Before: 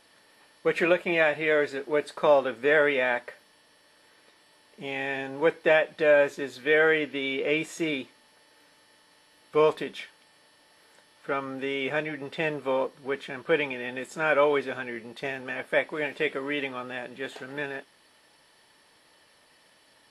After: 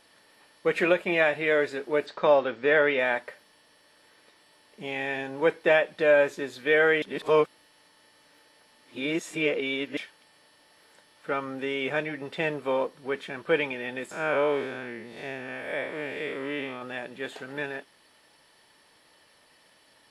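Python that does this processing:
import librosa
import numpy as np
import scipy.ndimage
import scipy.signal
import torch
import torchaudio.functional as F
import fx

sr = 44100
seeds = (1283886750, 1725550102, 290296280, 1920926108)

y = fx.lowpass(x, sr, hz=5800.0, slope=24, at=(2.06, 2.99))
y = fx.spec_blur(y, sr, span_ms=152.0, at=(14.11, 16.82))
y = fx.edit(y, sr, fx.reverse_span(start_s=7.02, length_s=2.95), tone=tone)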